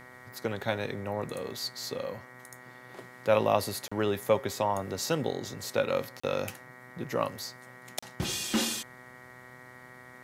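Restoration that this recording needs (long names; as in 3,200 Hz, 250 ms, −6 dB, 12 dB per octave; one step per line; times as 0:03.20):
hum removal 125.8 Hz, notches 18
notch filter 1,900 Hz, Q 30
repair the gap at 0:03.88/0:06.20/0:07.99, 35 ms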